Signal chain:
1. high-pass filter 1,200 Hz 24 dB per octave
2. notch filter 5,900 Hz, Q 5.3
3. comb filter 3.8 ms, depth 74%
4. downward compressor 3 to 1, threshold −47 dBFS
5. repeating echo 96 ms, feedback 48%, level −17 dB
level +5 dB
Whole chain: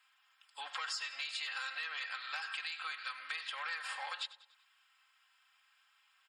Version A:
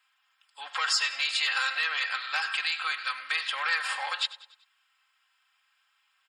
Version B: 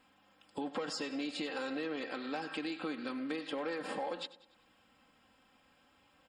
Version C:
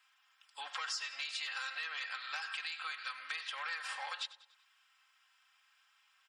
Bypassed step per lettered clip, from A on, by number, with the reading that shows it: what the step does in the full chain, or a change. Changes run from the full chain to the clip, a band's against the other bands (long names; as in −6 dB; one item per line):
4, average gain reduction 10.5 dB
1, 500 Hz band +25.5 dB
2, 8 kHz band +2.0 dB